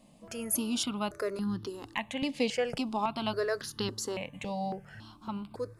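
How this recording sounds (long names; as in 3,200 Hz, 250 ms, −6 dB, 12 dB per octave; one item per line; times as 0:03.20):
notches that jump at a steady rate 3.6 Hz 380–2,300 Hz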